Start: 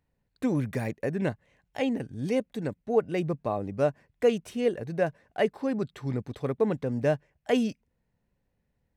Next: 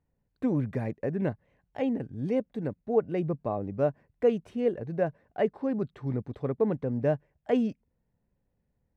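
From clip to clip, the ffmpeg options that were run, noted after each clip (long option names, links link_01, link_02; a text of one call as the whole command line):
ffmpeg -i in.wav -af "lowpass=frequency=1000:poles=1" out.wav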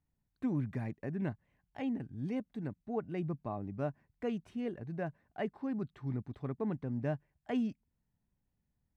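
ffmpeg -i in.wav -af "equalizer=frequency=500:width=2.3:gain=-11,volume=-5dB" out.wav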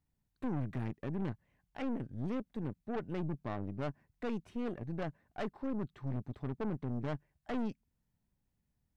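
ffmpeg -i in.wav -af "aeval=exprs='(tanh(79.4*val(0)+0.75)-tanh(0.75))/79.4':channel_layout=same,volume=5dB" out.wav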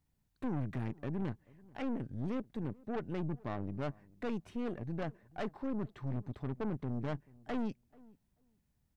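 ffmpeg -i in.wav -filter_complex "[0:a]asplit=2[link_01][link_02];[link_02]alimiter=level_in=15dB:limit=-24dB:level=0:latency=1,volume=-15dB,volume=-2dB[link_03];[link_01][link_03]amix=inputs=2:normalize=0,asplit=2[link_04][link_05];[link_05]adelay=436,lowpass=frequency=910:poles=1,volume=-23dB,asplit=2[link_06][link_07];[link_07]adelay=436,lowpass=frequency=910:poles=1,volume=0.16[link_08];[link_04][link_06][link_08]amix=inputs=3:normalize=0,volume=-2dB" out.wav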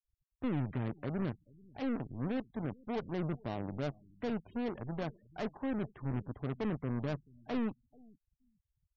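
ffmpeg -i in.wav -af "highshelf=frequency=2100:gain=-9,aeval=exprs='0.0398*(cos(1*acos(clip(val(0)/0.0398,-1,1)))-cos(1*PI/2))+0.00794*(cos(6*acos(clip(val(0)/0.0398,-1,1)))-cos(6*PI/2))':channel_layout=same,afftfilt=real='re*gte(hypot(re,im),0.00141)':imag='im*gte(hypot(re,im),0.00141)':win_size=1024:overlap=0.75,volume=2dB" out.wav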